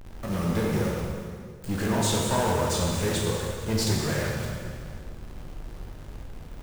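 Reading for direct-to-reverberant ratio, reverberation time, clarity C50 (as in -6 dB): -3.0 dB, 2.0 s, 0.0 dB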